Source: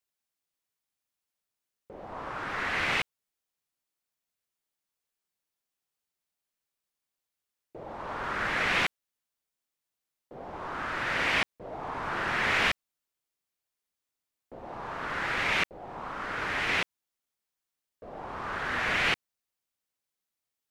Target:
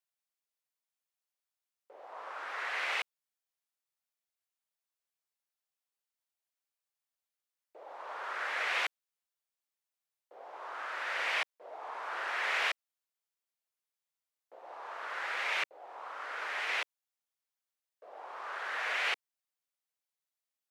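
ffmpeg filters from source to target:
-af "highpass=f=490:w=0.5412,highpass=f=490:w=1.3066,volume=-5.5dB"

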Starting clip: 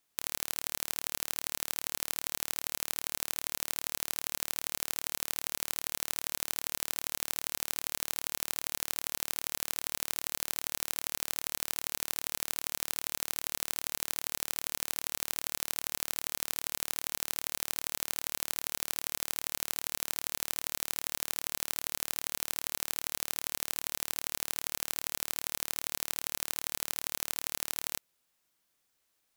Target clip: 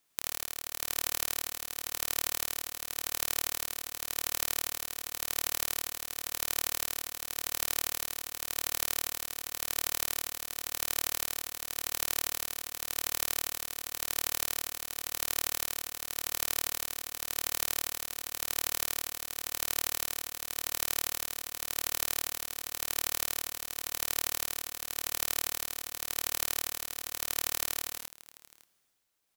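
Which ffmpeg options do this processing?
-filter_complex "[0:a]tremolo=f=0.91:d=0.62,asplit=2[a][b];[b]aecho=0:1:55|104|660:0.473|0.668|0.112[c];[a][c]amix=inputs=2:normalize=0,volume=2dB"

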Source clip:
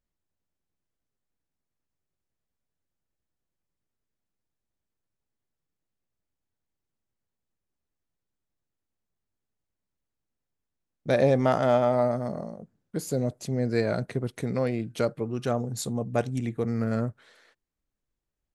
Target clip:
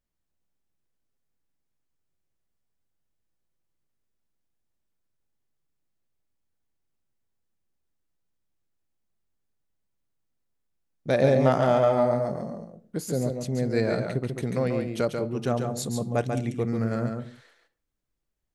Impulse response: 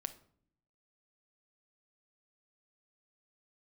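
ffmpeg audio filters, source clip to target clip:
-filter_complex "[0:a]asplit=2[a][b];[1:a]atrim=start_sample=2205,afade=t=out:st=0.23:d=0.01,atrim=end_sample=10584,adelay=140[c];[b][c]afir=irnorm=-1:irlink=0,volume=-3dB[d];[a][d]amix=inputs=2:normalize=0"

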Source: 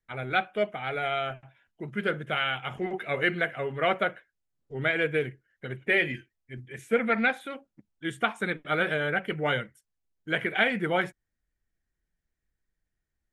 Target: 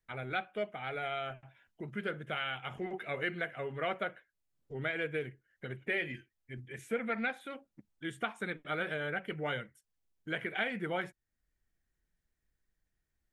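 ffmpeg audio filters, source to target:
-af "acompressor=threshold=-48dB:ratio=1.5"

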